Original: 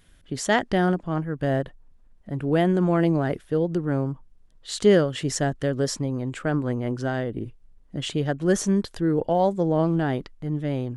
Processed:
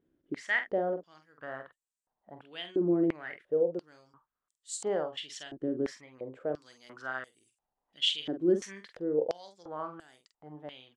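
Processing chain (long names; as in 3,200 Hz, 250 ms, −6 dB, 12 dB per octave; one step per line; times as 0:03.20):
0:06.61–0:08.81: high-shelf EQ 2,700 Hz +11.5 dB
double-tracking delay 46 ms −8 dB
band-pass on a step sequencer 2.9 Hz 330–7,900 Hz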